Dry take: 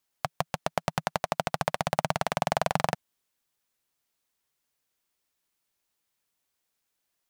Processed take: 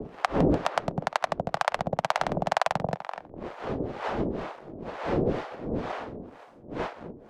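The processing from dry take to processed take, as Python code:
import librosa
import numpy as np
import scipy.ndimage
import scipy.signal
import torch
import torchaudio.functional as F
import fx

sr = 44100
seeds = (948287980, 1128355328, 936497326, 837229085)

y = fx.dmg_wind(x, sr, seeds[0], corner_hz=470.0, level_db=-35.0)
y = fx.echo_tape(y, sr, ms=248, feedback_pct=36, wet_db=-13.0, lp_hz=1900.0, drive_db=11.0, wow_cents=15)
y = fx.leveller(y, sr, passes=1)
y = fx.air_absorb(y, sr, metres=74.0)
y = fx.harmonic_tremolo(y, sr, hz=2.1, depth_pct=100, crossover_hz=580.0)
y = fx.low_shelf(y, sr, hz=250.0, db=-8.0)
y = fx.band_squash(y, sr, depth_pct=40)
y = y * 10.0 ** (5.5 / 20.0)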